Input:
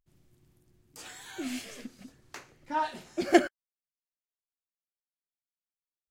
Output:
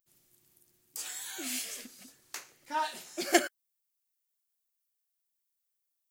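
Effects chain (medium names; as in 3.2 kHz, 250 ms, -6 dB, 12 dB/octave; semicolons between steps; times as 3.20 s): RIAA curve recording; trim -2 dB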